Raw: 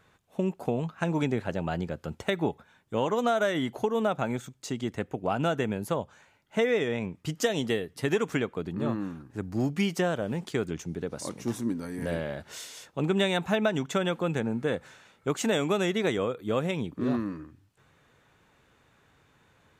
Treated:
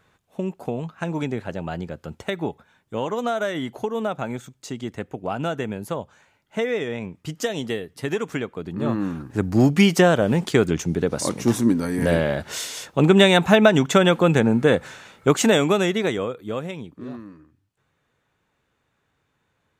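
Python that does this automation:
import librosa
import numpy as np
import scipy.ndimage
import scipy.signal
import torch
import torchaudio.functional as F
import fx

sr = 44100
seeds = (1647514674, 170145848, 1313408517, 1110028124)

y = fx.gain(x, sr, db=fx.line((8.6, 1.0), (9.22, 11.5), (15.28, 11.5), (16.6, -1.0), (17.17, -8.0)))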